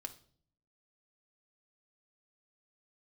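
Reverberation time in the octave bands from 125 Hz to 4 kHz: 0.90 s, 0.80 s, 0.60 s, 0.45 s, 0.40 s, 0.45 s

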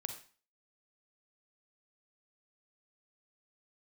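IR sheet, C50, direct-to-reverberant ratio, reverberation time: 8.0 dB, 5.5 dB, 0.40 s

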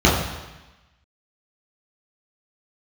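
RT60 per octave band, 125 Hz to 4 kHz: 1.1 s, 1.1 s, 1.0 s, 1.1 s, 1.2 s, 1.1 s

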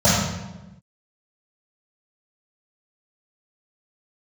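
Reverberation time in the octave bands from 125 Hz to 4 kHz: 1.3 s, 1.4 s, 1.1 s, 1.0 s, 0.90 s, 0.75 s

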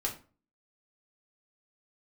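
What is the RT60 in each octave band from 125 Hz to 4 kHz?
0.50 s, 0.50 s, 0.40 s, 0.35 s, 0.30 s, 0.25 s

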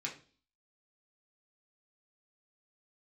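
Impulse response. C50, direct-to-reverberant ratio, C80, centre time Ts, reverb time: 11.0 dB, -3.0 dB, 16.0 dB, 17 ms, 0.40 s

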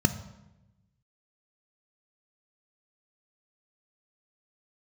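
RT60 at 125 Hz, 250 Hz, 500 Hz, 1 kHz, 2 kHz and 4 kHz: 1.5 s, 1.3 s, 1.0 s, 0.90 s, 0.85 s, 0.75 s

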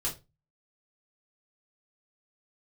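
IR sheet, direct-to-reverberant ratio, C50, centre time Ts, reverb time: -5.0 dB, 12.0 dB, 19 ms, 0.25 s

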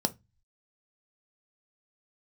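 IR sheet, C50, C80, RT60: 22.0 dB, 33.0 dB, 0.20 s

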